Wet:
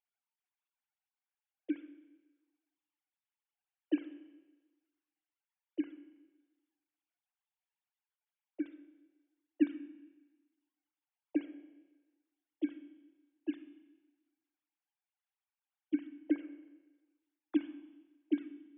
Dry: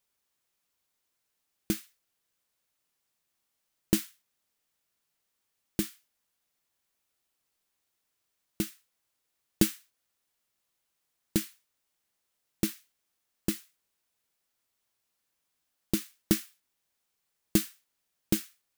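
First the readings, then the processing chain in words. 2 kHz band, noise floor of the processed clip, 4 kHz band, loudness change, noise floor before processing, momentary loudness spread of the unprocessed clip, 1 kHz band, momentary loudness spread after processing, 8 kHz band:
-10.0 dB, under -85 dBFS, under -20 dB, -6.0 dB, -81 dBFS, 13 LU, under -10 dB, 20 LU, under -40 dB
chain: sine-wave speech; Schroeder reverb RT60 1.2 s, combs from 31 ms, DRR 11 dB; gain -5 dB

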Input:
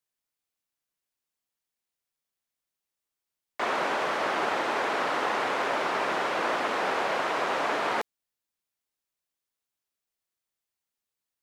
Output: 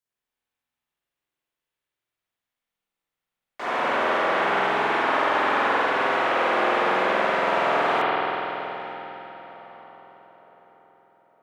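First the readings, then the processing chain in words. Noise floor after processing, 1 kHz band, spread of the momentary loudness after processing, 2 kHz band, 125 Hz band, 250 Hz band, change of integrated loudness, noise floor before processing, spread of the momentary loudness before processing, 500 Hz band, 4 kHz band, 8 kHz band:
under -85 dBFS, +6.0 dB, 13 LU, +6.0 dB, +6.5 dB, +5.5 dB, +5.5 dB, under -85 dBFS, 3 LU, +6.0 dB, +3.5 dB, n/a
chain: darkening echo 0.911 s, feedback 41%, low-pass 2100 Hz, level -16 dB; spring tank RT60 3.6 s, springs 47 ms, chirp 80 ms, DRR -10 dB; gain -4.5 dB

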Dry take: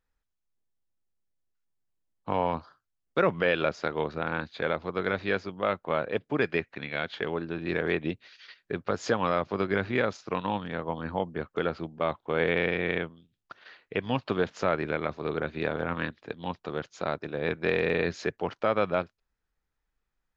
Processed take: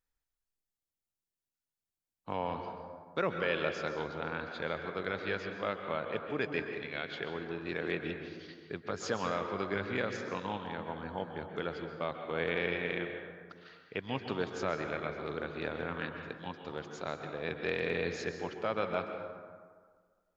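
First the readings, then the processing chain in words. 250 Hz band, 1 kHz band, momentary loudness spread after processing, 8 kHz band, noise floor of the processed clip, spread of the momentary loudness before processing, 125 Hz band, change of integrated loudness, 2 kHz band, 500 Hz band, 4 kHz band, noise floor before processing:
-7.0 dB, -6.5 dB, 10 LU, n/a, under -85 dBFS, 9 LU, -7.5 dB, -6.5 dB, -5.5 dB, -7.0 dB, -4.0 dB, -82 dBFS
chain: high shelf 3700 Hz +8.5 dB; plate-style reverb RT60 1.7 s, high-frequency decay 0.45×, pre-delay 0.115 s, DRR 5 dB; gain -8.5 dB

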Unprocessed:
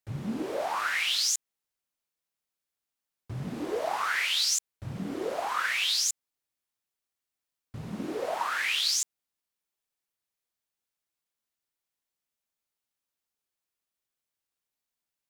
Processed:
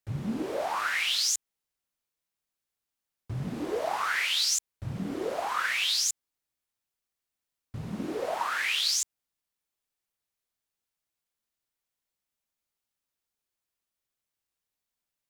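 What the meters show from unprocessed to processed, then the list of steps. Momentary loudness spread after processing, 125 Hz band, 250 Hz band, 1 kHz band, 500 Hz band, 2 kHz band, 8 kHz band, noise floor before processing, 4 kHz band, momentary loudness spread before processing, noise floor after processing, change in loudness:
12 LU, +2.5 dB, +1.0 dB, 0.0 dB, +0.5 dB, 0.0 dB, 0.0 dB, under -85 dBFS, 0.0 dB, 14 LU, under -85 dBFS, 0.0 dB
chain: low shelf 110 Hz +5.5 dB

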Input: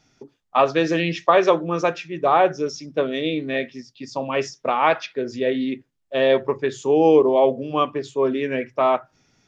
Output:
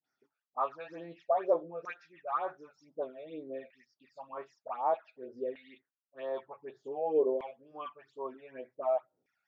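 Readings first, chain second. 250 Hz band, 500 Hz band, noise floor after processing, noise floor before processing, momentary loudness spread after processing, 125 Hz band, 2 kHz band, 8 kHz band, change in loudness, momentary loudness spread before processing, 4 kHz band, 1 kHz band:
-22.5 dB, -15.0 dB, under -85 dBFS, -69 dBFS, 17 LU, under -25 dB, -23.5 dB, n/a, -15.0 dB, 11 LU, under -25 dB, -15.0 dB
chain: dispersion highs, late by 48 ms, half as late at 950 Hz; phaser stages 12, 2.1 Hz, lowest notch 310–2900 Hz; LFO band-pass saw down 0.54 Hz 460–1800 Hz; gain -8 dB

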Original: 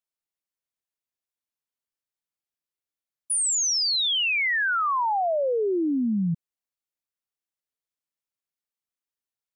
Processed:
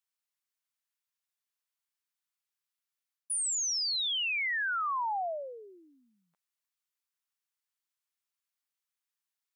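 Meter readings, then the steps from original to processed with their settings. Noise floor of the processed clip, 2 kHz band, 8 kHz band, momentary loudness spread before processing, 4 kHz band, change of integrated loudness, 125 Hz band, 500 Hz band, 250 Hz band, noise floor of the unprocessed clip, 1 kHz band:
under -85 dBFS, -7.5 dB, -7.5 dB, 6 LU, -7.5 dB, -7.0 dB, under -40 dB, -15.5 dB, under -35 dB, under -85 dBFS, -8.0 dB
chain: HPF 920 Hz 24 dB/oct; reverse; compressor, threshold -33 dBFS, peak gain reduction 9.5 dB; reverse; gain +2 dB

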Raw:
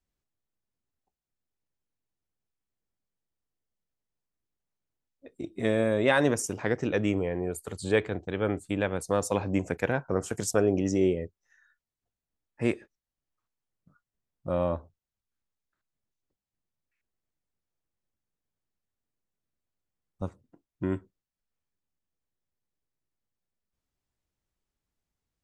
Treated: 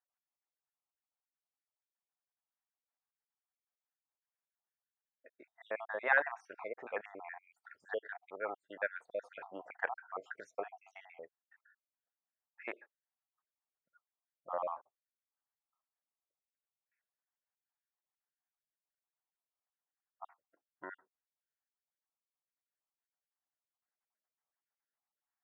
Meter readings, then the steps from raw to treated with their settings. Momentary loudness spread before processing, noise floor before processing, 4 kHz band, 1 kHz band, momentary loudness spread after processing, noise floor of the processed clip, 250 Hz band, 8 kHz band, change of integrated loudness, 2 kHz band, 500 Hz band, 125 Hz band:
14 LU, under -85 dBFS, -21.5 dB, -5.5 dB, 18 LU, under -85 dBFS, -29.0 dB, under -35 dB, -11.0 dB, -3.0 dB, -15.0 dB, under -40 dB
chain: random spectral dropouts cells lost 52%; Chebyshev band-pass 730–1800 Hz, order 2

